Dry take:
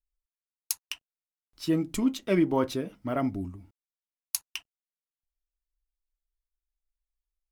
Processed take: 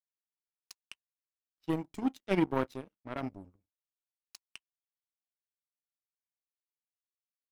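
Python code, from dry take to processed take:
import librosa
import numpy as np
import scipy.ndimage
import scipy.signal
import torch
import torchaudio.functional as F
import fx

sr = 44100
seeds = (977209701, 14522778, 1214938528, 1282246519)

y = fx.env_lowpass(x, sr, base_hz=2600.0, full_db=-23.0)
y = fx.power_curve(y, sr, exponent=2.0)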